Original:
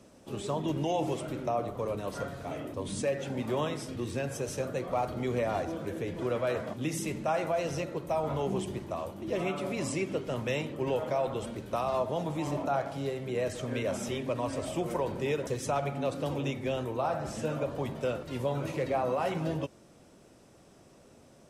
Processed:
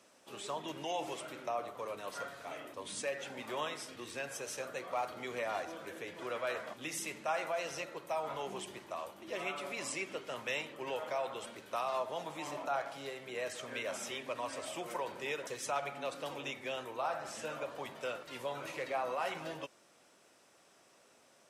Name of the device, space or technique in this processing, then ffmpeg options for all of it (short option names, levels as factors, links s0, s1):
filter by subtraction: -filter_complex "[0:a]asplit=2[s0][s1];[s1]lowpass=1600,volume=-1[s2];[s0][s2]amix=inputs=2:normalize=0,volume=0.794"